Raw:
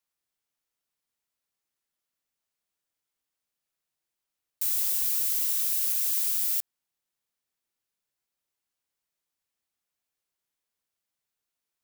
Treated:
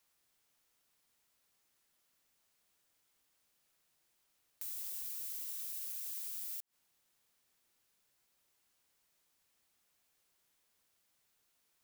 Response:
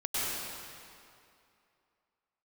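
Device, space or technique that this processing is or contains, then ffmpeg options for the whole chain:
de-esser from a sidechain: -filter_complex "[0:a]asplit=2[link_01][link_02];[link_02]highpass=frequency=4700:width=0.5412,highpass=frequency=4700:width=1.3066,apad=whole_len=521869[link_03];[link_01][link_03]sidechaincompress=threshold=-49dB:ratio=6:attack=0.66:release=81,volume=9dB"

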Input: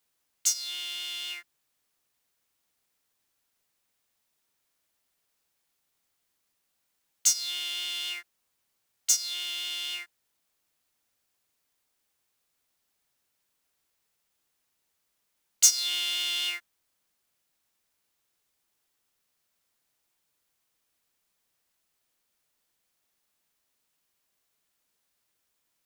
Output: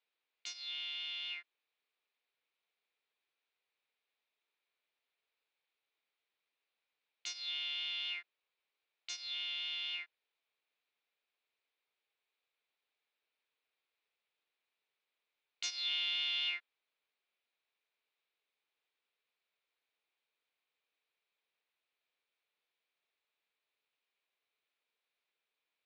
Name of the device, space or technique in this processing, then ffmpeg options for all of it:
phone earpiece: -af "highpass=410,equalizer=frequency=440:width_type=q:width=4:gain=6,equalizer=frequency=2400:width_type=q:width=4:gain=8,equalizer=frequency=3800:width_type=q:width=4:gain=5,lowpass=frequency=4000:width=0.5412,lowpass=frequency=4000:width=1.3066,volume=-8.5dB"

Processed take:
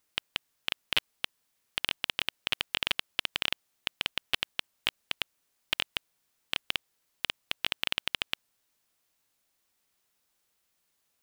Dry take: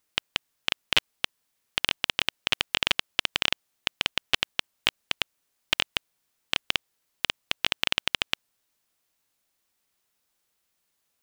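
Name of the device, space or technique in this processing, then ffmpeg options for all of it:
limiter into clipper: -af "alimiter=limit=-7dB:level=0:latency=1:release=16,asoftclip=type=hard:threshold=-9.5dB"

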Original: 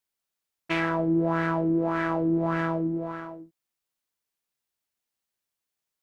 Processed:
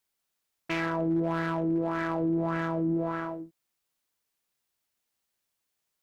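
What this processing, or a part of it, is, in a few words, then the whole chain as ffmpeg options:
clipper into limiter: -af "asoftclip=type=hard:threshold=-17.5dB,alimiter=level_in=1dB:limit=-24dB:level=0:latency=1,volume=-1dB,volume=4dB"

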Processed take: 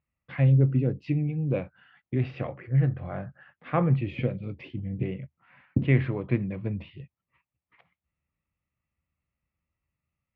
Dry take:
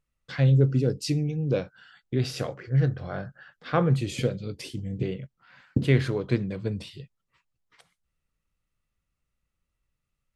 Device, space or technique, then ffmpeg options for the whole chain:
bass cabinet: -af "highpass=73,equalizer=frequency=78:width_type=q:width=4:gain=6,equalizer=frequency=440:width_type=q:width=4:gain=-7,equalizer=frequency=1500:width_type=q:width=4:gain=-8,lowpass=frequency=2300:width=0.5412,lowpass=frequency=2300:width=1.3066,equalizer=frequency=2500:width_type=o:width=0.64:gain=4.5"

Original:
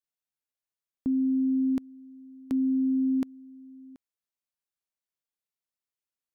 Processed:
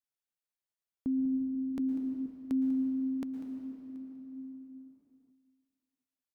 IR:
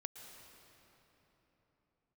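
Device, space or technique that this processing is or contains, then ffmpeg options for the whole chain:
cave: -filter_complex "[0:a]aecho=1:1:195:0.2[link_01];[1:a]atrim=start_sample=2205[link_02];[link_01][link_02]afir=irnorm=-1:irlink=0,asettb=1/sr,asplit=3[link_03][link_04][link_05];[link_03]atrim=end=1.794[link_06];[link_04]atrim=start=1.79:end=2.26,asetpts=PTS-STARTPTS,afade=type=in:duration=0.004:curve=qsin,afade=type=out:start_time=0.466:duration=0.004:curve=qsin,equalizer=frequency=320:width=2:gain=8.5[link_07];[link_05]atrim=start=2.256[link_08];[link_06][link_07]acrossfade=duration=0.004:curve1=hsin:curve2=qsin[link_09];[link_09][link_08]acrossfade=duration=0.004:curve1=qsin:curve2=hsin"

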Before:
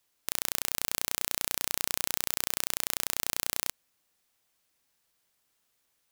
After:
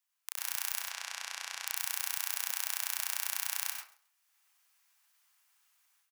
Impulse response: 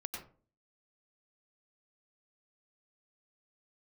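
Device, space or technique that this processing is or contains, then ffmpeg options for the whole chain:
far laptop microphone: -filter_complex "[0:a]highpass=frequency=900:width=0.5412,highpass=frequency=900:width=1.3066,asettb=1/sr,asplit=3[link_01][link_02][link_03];[link_01]atrim=end=0.804[link_04];[link_02]atrim=start=0.8:end=1.66,asetpts=PTS-STARTPTS,afade=type=in:duration=0.004:curve=qsin,afade=type=out:start_time=0.856:duration=0.004:curve=qsin,lowpass=6000[link_05];[link_03]atrim=start=1.656[link_06];[link_04][link_05]acrossfade=duration=0.004:curve1=hsin:curve2=qsin[link_07];[link_07][link_06]acrossfade=duration=0.004:curve1=qsin:curve2=hsin[link_08];[1:a]atrim=start_sample=2205[link_09];[link_08][link_09]afir=irnorm=-1:irlink=0,highpass=200,dynaudnorm=framelen=260:gausssize=3:maxgain=12dB,equalizer=frequency=4000:width_type=o:width=0.45:gain=-3.5,aecho=1:1:135|270:0.0794|0.0175,volume=-6dB"

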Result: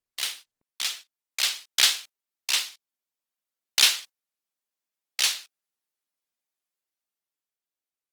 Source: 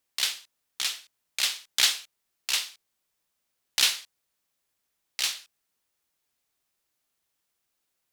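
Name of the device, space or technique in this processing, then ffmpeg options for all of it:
video call: -af "highpass=frequency=180:width=0.5412,highpass=frequency=180:width=1.3066,dynaudnorm=framelen=240:gausssize=11:maxgain=5.5dB,agate=range=-15dB:threshold=-40dB:ratio=16:detection=peak" -ar 48000 -c:a libopus -b:a 24k

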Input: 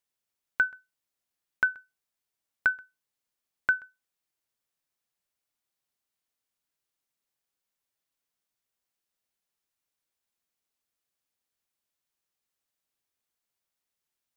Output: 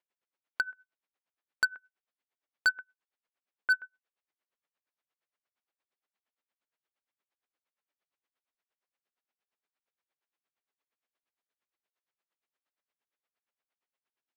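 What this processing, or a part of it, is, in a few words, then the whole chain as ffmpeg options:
helicopter radio: -af "highpass=310,lowpass=2700,aeval=exprs='val(0)*pow(10,-26*(0.5-0.5*cos(2*PI*8.6*n/s))/20)':channel_layout=same,asoftclip=type=hard:threshold=-26dB,volume=6dB"

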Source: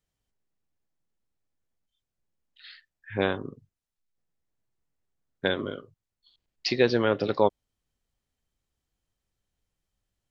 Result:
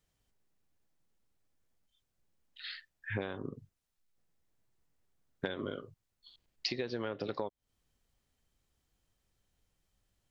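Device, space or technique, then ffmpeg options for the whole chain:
serial compression, leveller first: -af "acompressor=threshold=-25dB:ratio=2.5,acompressor=threshold=-37dB:ratio=8,volume=4dB"

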